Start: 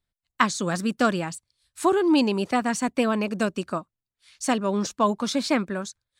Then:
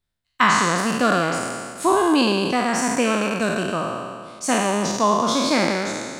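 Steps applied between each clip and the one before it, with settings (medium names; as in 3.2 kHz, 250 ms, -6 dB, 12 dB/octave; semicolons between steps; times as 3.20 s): spectral sustain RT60 1.89 s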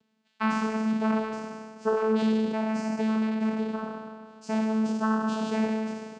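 comb 5.6 ms, depth 66%; upward compressor, threshold -35 dBFS; vocoder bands 8, saw 219 Hz; trim -7.5 dB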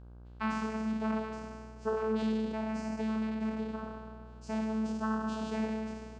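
mains buzz 60 Hz, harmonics 27, -43 dBFS -8 dB/octave; trim -7 dB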